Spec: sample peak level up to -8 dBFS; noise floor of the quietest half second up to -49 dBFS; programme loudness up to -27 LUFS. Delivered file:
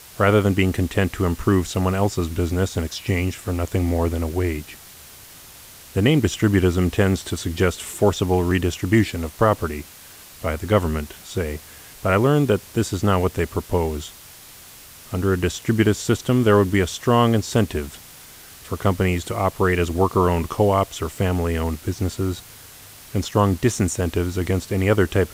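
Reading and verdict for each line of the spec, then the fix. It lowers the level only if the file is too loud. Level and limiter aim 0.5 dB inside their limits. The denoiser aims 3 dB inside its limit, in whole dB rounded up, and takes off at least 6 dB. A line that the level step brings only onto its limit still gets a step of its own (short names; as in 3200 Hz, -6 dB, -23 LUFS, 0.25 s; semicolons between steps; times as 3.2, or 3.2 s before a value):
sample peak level -5.0 dBFS: fail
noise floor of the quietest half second -44 dBFS: fail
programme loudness -21.5 LUFS: fail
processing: gain -6 dB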